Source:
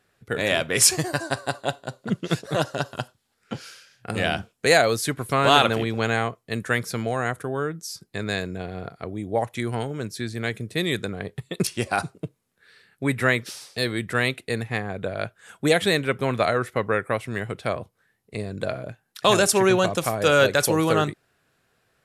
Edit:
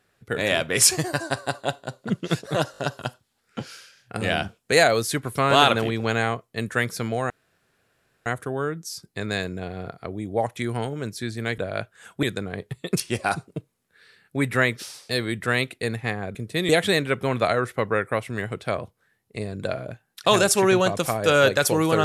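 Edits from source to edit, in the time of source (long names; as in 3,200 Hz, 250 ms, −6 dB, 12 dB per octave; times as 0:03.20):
0:02.72: stutter 0.02 s, 4 plays
0:07.24: splice in room tone 0.96 s
0:10.56–0:10.90: swap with 0:15.02–0:15.67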